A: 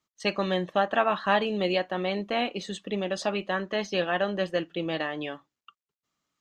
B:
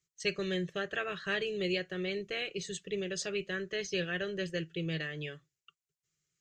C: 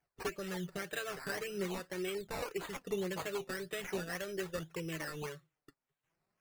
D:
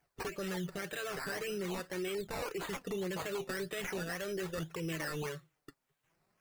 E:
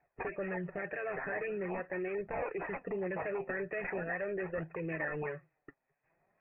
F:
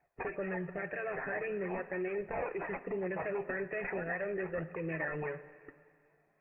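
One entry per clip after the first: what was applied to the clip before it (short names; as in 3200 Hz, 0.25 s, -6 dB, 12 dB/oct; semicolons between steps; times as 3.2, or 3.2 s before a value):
EQ curve 100 Hz 0 dB, 160 Hz +5 dB, 240 Hz -23 dB, 390 Hz -1 dB, 910 Hz -28 dB, 1500 Hz -6 dB, 2300 Hz -3 dB, 3600 Hz -6 dB, 7300 Hz +5 dB, 10000 Hz -6 dB
compressor, threshold -35 dBFS, peak gain reduction 8.5 dB; decimation with a swept rate 11×, swing 60% 1.8 Hz; flange 0.43 Hz, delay 1.2 ms, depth 6.6 ms, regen +34%; gain +3.5 dB
limiter -37.5 dBFS, peak gain reduction 11.5 dB; gain +7 dB
rippled Chebyshev low-pass 2600 Hz, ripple 9 dB; gain +6.5 dB
plate-style reverb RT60 2.2 s, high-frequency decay 1×, DRR 13 dB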